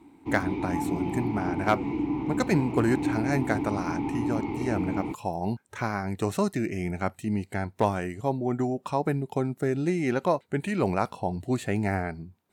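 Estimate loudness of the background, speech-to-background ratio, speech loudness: -30.5 LUFS, 1.0 dB, -29.5 LUFS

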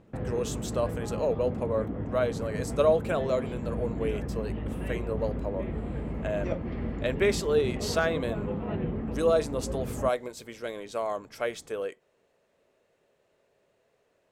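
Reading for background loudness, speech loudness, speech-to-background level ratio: -34.5 LUFS, -30.5 LUFS, 4.0 dB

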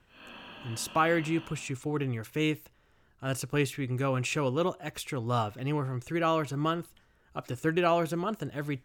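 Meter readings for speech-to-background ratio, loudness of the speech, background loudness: 16.0 dB, -30.5 LUFS, -46.5 LUFS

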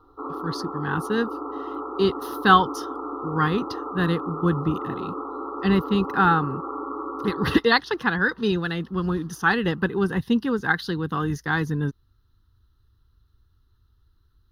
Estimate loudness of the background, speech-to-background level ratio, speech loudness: -32.5 LUFS, 8.5 dB, -24.0 LUFS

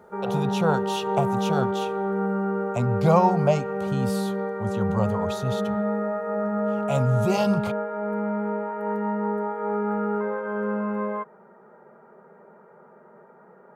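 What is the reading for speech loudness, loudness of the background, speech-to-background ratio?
-26.0 LUFS, -27.0 LUFS, 1.0 dB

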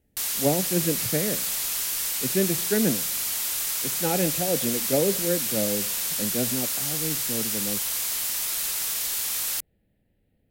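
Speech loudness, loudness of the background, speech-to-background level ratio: -28.5 LUFS, -25.0 LUFS, -3.5 dB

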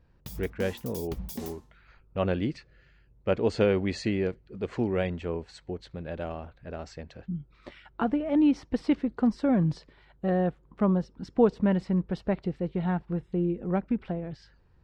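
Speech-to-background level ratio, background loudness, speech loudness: 12.0 dB, -41.0 LUFS, -29.0 LUFS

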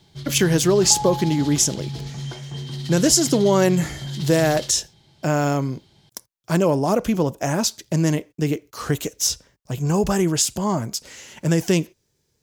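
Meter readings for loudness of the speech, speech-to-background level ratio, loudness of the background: -20.5 LUFS, 10.5 dB, -31.0 LUFS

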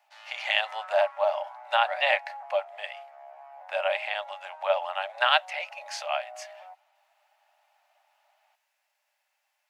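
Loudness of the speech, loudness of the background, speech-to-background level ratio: -28.0 LUFS, -45.5 LUFS, 17.5 dB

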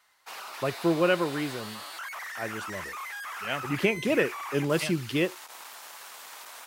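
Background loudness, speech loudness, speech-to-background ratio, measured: -38.5 LUFS, -28.5 LUFS, 10.0 dB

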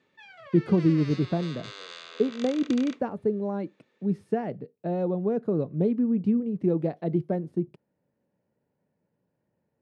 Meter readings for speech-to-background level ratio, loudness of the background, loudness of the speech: 15.5 dB, -43.0 LUFS, -27.5 LUFS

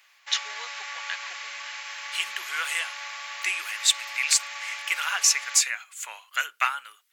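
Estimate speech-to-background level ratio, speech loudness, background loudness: 9.5 dB, -25.5 LUFS, -35.0 LUFS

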